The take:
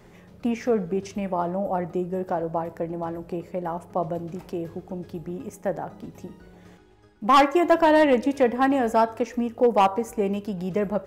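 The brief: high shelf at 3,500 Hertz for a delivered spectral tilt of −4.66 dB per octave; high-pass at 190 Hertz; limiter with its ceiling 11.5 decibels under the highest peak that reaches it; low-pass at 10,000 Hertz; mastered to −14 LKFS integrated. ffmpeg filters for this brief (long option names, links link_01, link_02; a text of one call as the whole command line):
ffmpeg -i in.wav -af "highpass=190,lowpass=10000,highshelf=frequency=3500:gain=8.5,volume=14dB,alimiter=limit=-1dB:level=0:latency=1" out.wav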